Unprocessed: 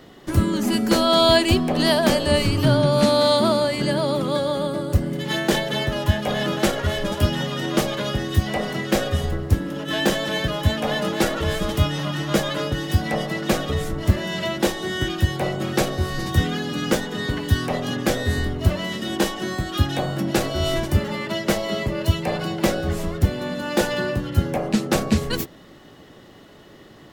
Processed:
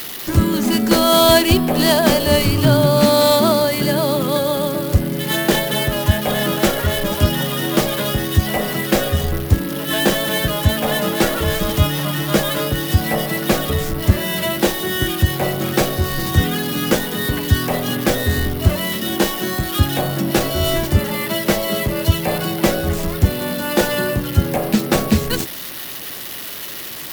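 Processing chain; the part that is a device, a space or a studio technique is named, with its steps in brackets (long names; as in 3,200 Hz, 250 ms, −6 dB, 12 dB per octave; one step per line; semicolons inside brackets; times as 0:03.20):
budget class-D amplifier (gap after every zero crossing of 0.079 ms; spike at every zero crossing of −18 dBFS)
level +4 dB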